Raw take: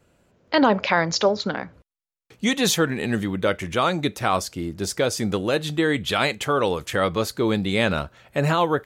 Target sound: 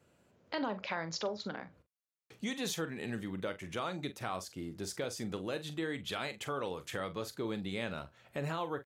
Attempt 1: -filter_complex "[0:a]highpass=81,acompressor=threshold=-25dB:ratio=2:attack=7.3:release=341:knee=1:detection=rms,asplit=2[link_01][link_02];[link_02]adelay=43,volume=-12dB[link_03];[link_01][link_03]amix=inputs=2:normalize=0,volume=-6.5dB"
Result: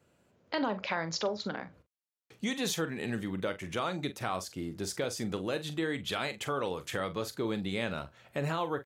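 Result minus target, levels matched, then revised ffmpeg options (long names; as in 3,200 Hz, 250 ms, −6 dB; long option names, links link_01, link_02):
downward compressor: peak gain reduction −4 dB
-filter_complex "[0:a]highpass=81,acompressor=threshold=-33.5dB:ratio=2:attack=7.3:release=341:knee=1:detection=rms,asplit=2[link_01][link_02];[link_02]adelay=43,volume=-12dB[link_03];[link_01][link_03]amix=inputs=2:normalize=0,volume=-6.5dB"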